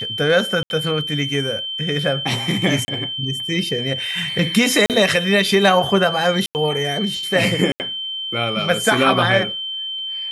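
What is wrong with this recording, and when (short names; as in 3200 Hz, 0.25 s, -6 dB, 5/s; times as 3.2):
tone 3100 Hz -24 dBFS
0.63–0.7 gap 71 ms
2.85–2.88 gap 30 ms
4.86–4.9 gap 38 ms
6.46–6.55 gap 89 ms
7.72–7.8 gap 79 ms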